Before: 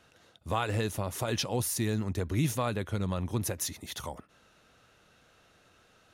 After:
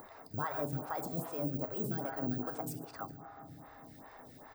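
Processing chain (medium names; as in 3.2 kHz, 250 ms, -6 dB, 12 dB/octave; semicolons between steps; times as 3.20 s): speed mistake 33 rpm record played at 45 rpm; in parallel at -0.5 dB: compression, threshold -41 dBFS, peak gain reduction 16 dB; on the sum: careless resampling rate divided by 2×, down none, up zero stuff; resonant high shelf 1.8 kHz -9.5 dB, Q 1.5; delay 143 ms -14.5 dB; on a send at -7 dB: reverberation RT60 1.9 s, pre-delay 4 ms; on the sum: upward compressor, threshold -32 dBFS; lamp-driven phase shifter 2.5 Hz; trim -6.5 dB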